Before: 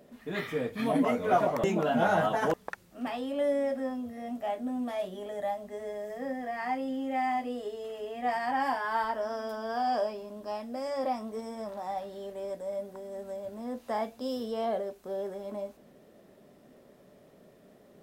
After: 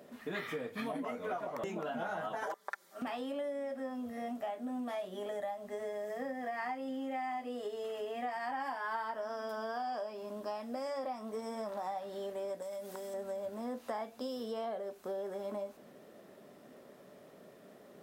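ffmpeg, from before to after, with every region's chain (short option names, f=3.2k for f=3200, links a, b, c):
-filter_complex "[0:a]asettb=1/sr,asplit=3[a][b][c];[a]atrim=end=2.434[d];[b]atrim=start=2.43:end=3.02,asetpts=PTS-STARTPTS,afade=t=in:d=0.004:c=qsin,afade=t=out:st=0.586:d=0.004:c=qsin,highpass=530,equalizer=f=2.7k:w=6.5:g=-13,aecho=1:1:5.1:0.8,atrim=end_sample=26019[e];[c]atrim=start=3.016[f];[d][e]acrossfade=d=0.004:c1=hsin:c2=qsin[g];[g][f]acrossfade=d=0.004:c1=qsin:c2=hsin,asettb=1/sr,asplit=3[h][i][j];[h]atrim=end=12.624[k];[i]atrim=start=12.62:end=13.14,asetpts=PTS-STARTPTS,afade=t=in:d=0.004:c=qsin,afade=t=out:st=0.516:d=0.004:c=qsin,highshelf=f=2.2k:g=12,acompressor=threshold=-41dB:ratio=6:attack=3.2:release=140:knee=1:detection=peak[l];[j]atrim=start=13.136[m];[k][l]acrossfade=d=0.004:c1=hsin:c2=qsin[n];[n][m]acrossfade=d=0.004:c1=qsin:c2=hsin,highpass=f=210:p=1,acompressor=threshold=-38dB:ratio=10,equalizer=f=1.3k:w=1.6:g=3,volume=2dB"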